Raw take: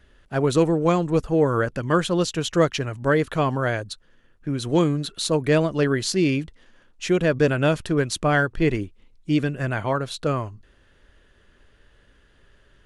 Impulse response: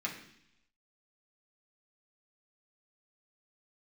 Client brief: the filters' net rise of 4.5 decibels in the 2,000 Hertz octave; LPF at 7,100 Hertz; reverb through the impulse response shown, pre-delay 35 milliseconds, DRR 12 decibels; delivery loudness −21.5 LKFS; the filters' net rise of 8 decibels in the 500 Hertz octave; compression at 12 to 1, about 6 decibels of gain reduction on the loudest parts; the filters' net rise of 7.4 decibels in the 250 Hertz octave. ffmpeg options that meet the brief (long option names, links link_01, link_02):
-filter_complex "[0:a]lowpass=7100,equalizer=frequency=250:width_type=o:gain=7.5,equalizer=frequency=500:width_type=o:gain=7,equalizer=frequency=2000:width_type=o:gain=5.5,acompressor=threshold=-12dB:ratio=12,asplit=2[link_01][link_02];[1:a]atrim=start_sample=2205,adelay=35[link_03];[link_02][link_03]afir=irnorm=-1:irlink=0,volume=-15.5dB[link_04];[link_01][link_04]amix=inputs=2:normalize=0,volume=-2.5dB"